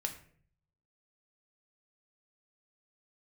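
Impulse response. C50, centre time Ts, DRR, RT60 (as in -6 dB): 11.0 dB, 13 ms, 4.0 dB, 0.55 s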